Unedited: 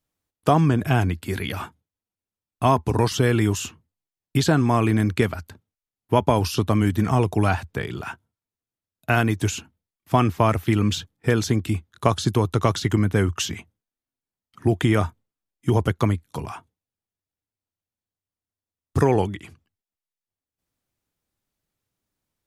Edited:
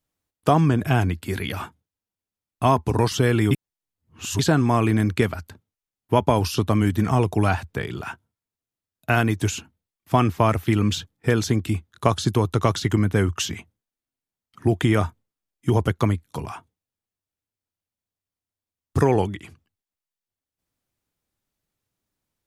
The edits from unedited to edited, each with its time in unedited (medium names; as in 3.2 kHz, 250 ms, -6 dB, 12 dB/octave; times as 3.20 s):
3.51–4.39 s: reverse